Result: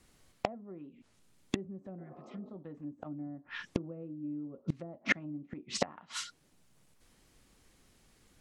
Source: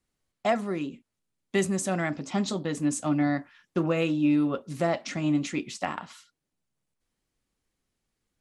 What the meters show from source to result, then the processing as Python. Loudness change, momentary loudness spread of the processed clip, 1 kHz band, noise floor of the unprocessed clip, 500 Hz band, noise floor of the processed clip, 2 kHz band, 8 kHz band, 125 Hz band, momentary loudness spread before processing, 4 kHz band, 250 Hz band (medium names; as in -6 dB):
-11.5 dB, 14 LU, -12.0 dB, -83 dBFS, -13.5 dB, -68 dBFS, -4.0 dB, -9.5 dB, -11.5 dB, 9 LU, -4.5 dB, -14.0 dB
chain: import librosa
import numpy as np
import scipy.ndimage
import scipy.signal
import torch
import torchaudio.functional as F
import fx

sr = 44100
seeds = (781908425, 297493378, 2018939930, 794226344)

y = fx.spec_repair(x, sr, seeds[0], start_s=2.01, length_s=0.46, low_hz=220.0, high_hz=1300.0, source='both')
y = fx.env_lowpass_down(y, sr, base_hz=460.0, full_db=-23.5)
y = fx.gate_flip(y, sr, shuts_db=-30.0, range_db=-32)
y = F.gain(torch.from_numpy(y), 16.0).numpy()